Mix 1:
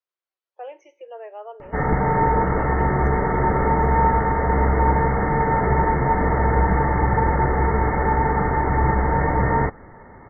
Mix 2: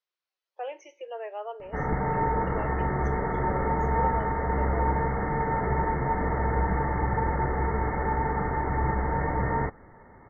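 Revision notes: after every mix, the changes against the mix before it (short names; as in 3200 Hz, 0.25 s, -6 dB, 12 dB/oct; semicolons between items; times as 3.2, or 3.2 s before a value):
speech: add high shelf 2400 Hz +9 dB; background -7.5 dB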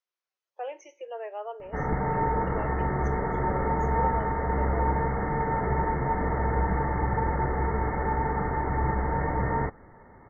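master: remove synth low-pass 4500 Hz, resonance Q 1.5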